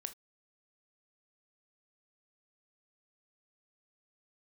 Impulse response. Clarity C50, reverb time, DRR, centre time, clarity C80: 15.5 dB, not exponential, 8.5 dB, 6 ms, 31.0 dB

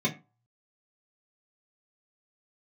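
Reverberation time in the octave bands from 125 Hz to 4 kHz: 0.50, 0.30, 0.25, 0.30, 0.30, 0.20 s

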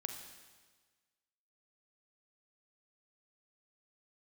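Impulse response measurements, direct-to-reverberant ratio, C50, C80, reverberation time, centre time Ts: 4.5 dB, 6.0 dB, 7.5 dB, 1.4 s, 35 ms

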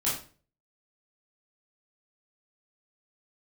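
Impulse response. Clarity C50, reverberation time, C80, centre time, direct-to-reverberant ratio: 4.0 dB, 0.40 s, 9.5 dB, 39 ms, -8.5 dB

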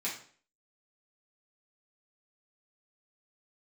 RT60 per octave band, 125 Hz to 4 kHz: 0.50, 0.50, 0.50, 0.45, 0.45, 0.45 s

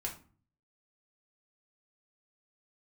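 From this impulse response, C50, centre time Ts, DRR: 10.0 dB, 18 ms, -2.0 dB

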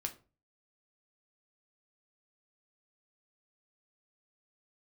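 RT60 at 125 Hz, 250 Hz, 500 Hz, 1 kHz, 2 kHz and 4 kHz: 0.55, 0.40, 0.35, 0.35, 0.25, 0.25 s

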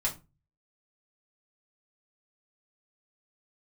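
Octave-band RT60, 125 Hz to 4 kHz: 0.60, 0.35, 0.30, 0.25, 0.20, 0.20 s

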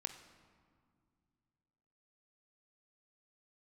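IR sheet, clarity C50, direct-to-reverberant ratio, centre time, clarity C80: 9.5 dB, 6.5 dB, 18 ms, 11.0 dB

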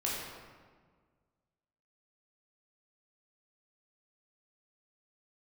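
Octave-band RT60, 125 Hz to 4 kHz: 2.1, 1.9, 1.7, 1.6, 1.3, 1.0 s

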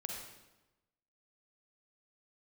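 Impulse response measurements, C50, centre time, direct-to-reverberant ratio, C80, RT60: 1.0 dB, 56 ms, 0.5 dB, 4.0 dB, 1.0 s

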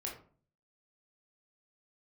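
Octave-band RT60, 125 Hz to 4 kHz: 0.70, 0.60, 0.45, 0.45, 0.30, 0.25 s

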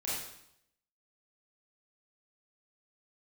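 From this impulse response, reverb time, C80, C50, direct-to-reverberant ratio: 0.75 s, 3.0 dB, -1.0 dB, -8.0 dB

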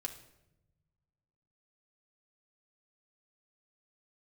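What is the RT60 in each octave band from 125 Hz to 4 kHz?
2.2, 1.6, 1.1, 0.75, 0.70, 0.65 s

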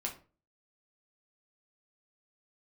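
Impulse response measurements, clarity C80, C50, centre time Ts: 16.5 dB, 11.0 dB, 16 ms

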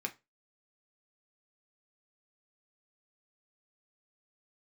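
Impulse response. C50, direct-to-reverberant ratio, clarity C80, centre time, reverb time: 19.0 dB, 3.0 dB, 26.5 dB, 7 ms, 0.25 s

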